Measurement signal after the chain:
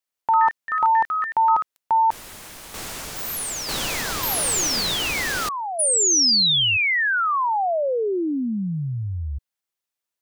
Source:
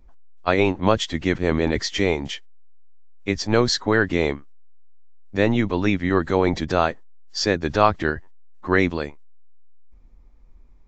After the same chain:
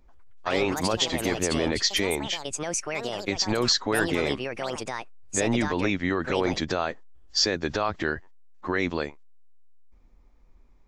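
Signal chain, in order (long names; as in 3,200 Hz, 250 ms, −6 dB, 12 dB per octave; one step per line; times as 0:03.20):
low-shelf EQ 210 Hz −7 dB
brickwall limiter −14 dBFS
dynamic equaliser 5,100 Hz, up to +4 dB, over −38 dBFS, Q 0.99
delay with pitch and tempo change per echo 134 ms, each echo +6 semitones, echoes 2, each echo −6 dB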